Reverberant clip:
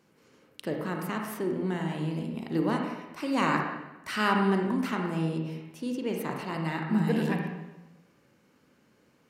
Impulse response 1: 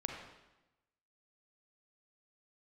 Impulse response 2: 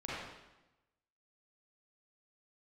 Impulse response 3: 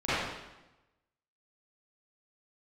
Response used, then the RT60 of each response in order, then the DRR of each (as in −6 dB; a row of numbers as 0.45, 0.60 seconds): 1; 1.0, 1.0, 1.0 seconds; 1.5, −8.5, −16.0 decibels